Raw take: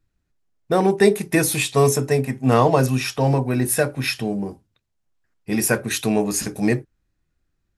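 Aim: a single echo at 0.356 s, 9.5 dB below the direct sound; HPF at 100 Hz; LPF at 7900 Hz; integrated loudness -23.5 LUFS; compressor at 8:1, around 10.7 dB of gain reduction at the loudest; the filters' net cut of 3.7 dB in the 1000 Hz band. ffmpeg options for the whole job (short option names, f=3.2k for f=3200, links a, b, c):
-af "highpass=100,lowpass=7.9k,equalizer=f=1k:t=o:g=-5,acompressor=threshold=-21dB:ratio=8,aecho=1:1:356:0.335,volume=3dB"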